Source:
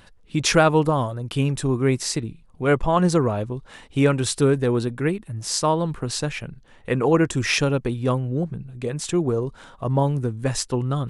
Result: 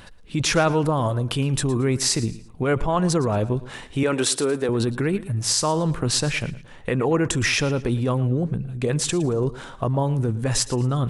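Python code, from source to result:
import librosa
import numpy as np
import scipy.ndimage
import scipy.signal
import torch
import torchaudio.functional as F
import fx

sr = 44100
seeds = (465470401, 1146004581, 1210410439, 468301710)

p1 = fx.highpass(x, sr, hz=300.0, slope=12, at=(4.03, 4.69))
p2 = fx.over_compress(p1, sr, threshold_db=-26.0, ratio=-0.5)
p3 = p1 + (p2 * librosa.db_to_amplitude(1.0))
p4 = fx.echo_feedback(p3, sr, ms=113, feedback_pct=32, wet_db=-17.5)
y = p4 * librosa.db_to_amplitude(-3.5)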